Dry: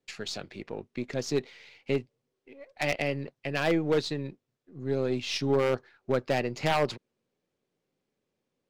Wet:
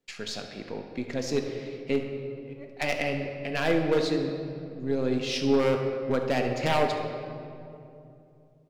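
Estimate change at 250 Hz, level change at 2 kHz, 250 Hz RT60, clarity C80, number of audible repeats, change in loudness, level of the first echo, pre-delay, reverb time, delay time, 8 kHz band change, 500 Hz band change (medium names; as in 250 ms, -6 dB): +3.5 dB, +1.5 dB, 3.7 s, 6.5 dB, 1, +1.5 dB, -14.0 dB, 3 ms, 2.7 s, 70 ms, +0.5 dB, +2.5 dB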